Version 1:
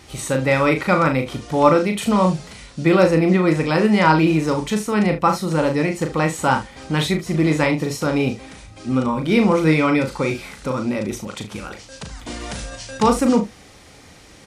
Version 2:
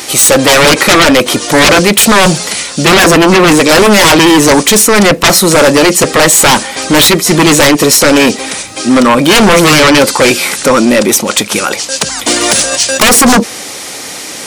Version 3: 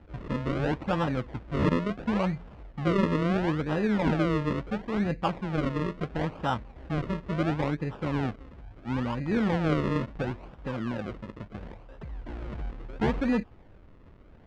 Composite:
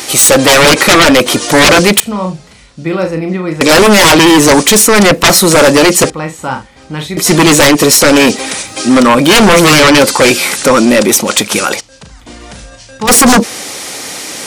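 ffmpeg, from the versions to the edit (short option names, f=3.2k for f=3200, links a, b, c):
-filter_complex "[0:a]asplit=3[a][b][c];[1:a]asplit=4[d][e][f][g];[d]atrim=end=2.002[h];[a]atrim=start=1.998:end=3.612[i];[e]atrim=start=3.608:end=6.102[j];[b]atrim=start=6.098:end=7.172[k];[f]atrim=start=7.168:end=11.81[l];[c]atrim=start=11.79:end=13.09[m];[g]atrim=start=13.07[n];[h][i]acrossfade=d=0.004:c1=hsin:c2=hsin[o];[o][j]acrossfade=d=0.004:c1=hsin:c2=hsin[p];[p][k]acrossfade=d=0.004:c1=hsin:c2=hsin[q];[q][l]acrossfade=d=0.004:c1=hsin:c2=hsin[r];[r][m]acrossfade=d=0.02:c1=tri:c2=tri[s];[s][n]acrossfade=d=0.02:c1=tri:c2=tri"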